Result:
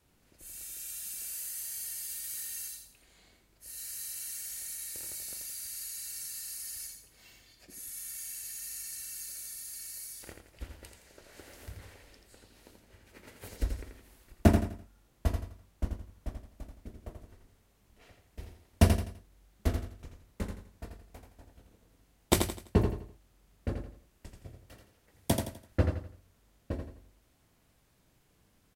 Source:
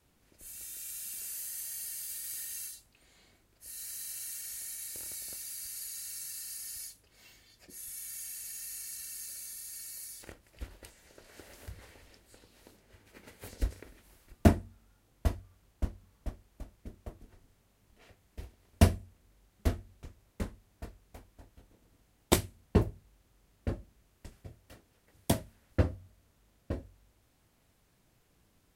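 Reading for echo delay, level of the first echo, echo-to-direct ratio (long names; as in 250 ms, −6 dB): 84 ms, −6.0 dB, −5.5 dB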